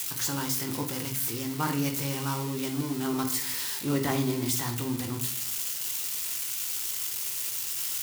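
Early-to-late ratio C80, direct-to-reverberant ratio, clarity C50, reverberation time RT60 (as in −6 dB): 14.5 dB, 3.5 dB, 10.5 dB, 0.55 s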